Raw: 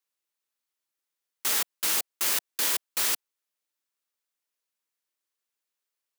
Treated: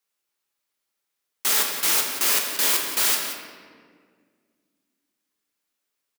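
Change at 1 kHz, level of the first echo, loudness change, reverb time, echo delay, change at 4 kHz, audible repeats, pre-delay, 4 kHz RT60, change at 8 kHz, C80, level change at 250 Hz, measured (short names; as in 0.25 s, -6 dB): +7.0 dB, -11.0 dB, +5.5 dB, 1.9 s, 0.179 s, +6.0 dB, 1, 5 ms, 1.1 s, +5.5 dB, 4.5 dB, +7.5 dB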